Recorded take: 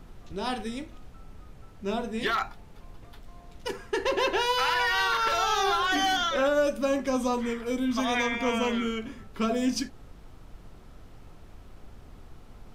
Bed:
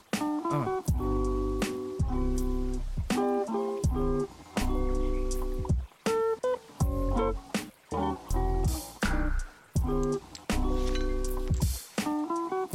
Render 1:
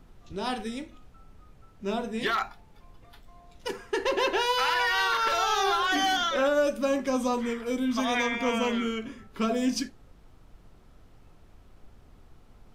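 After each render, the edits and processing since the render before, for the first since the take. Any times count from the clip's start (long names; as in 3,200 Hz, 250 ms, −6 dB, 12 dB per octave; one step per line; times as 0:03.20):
noise reduction from a noise print 6 dB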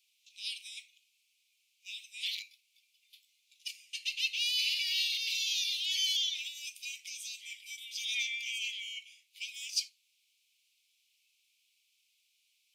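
Butterworth high-pass 2,300 Hz 96 dB per octave
dynamic equaliser 4,400 Hz, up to +5 dB, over −50 dBFS, Q 5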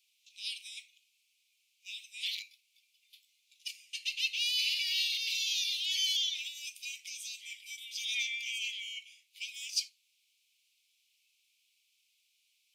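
no processing that can be heard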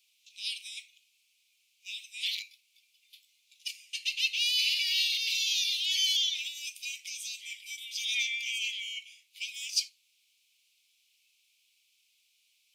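level +3.5 dB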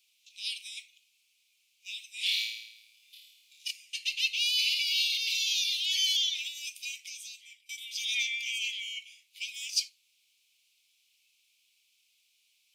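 0:02.14–0:03.71: flutter between parallel walls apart 4.6 metres, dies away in 0.83 s
0:04.28–0:05.93: linear-phase brick-wall high-pass 2,000 Hz
0:06.86–0:07.69: fade out, to −22.5 dB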